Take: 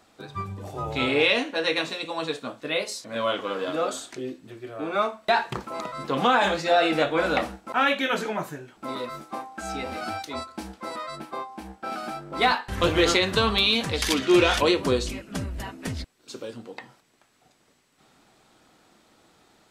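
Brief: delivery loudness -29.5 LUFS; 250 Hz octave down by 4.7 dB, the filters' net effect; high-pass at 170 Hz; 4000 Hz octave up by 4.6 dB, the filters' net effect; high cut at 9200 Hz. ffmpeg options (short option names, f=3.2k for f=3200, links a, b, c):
-af "highpass=170,lowpass=9.2k,equalizer=f=250:t=o:g=-6.5,equalizer=f=4k:t=o:g=5.5,volume=-6dB"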